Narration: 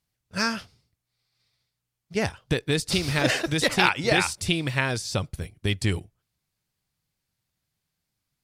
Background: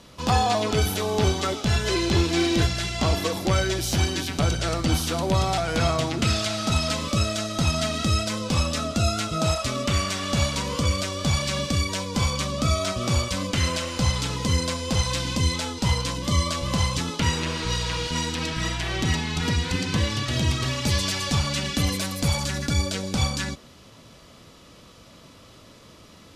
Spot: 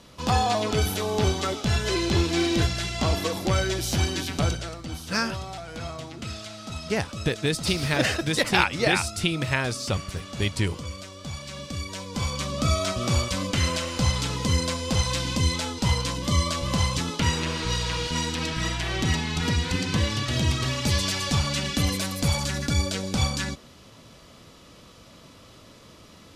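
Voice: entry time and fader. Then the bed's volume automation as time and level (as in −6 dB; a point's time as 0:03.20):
4.75 s, −0.5 dB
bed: 0:04.48 −1.5 dB
0:04.76 −12.5 dB
0:11.39 −12.5 dB
0:12.68 −0.5 dB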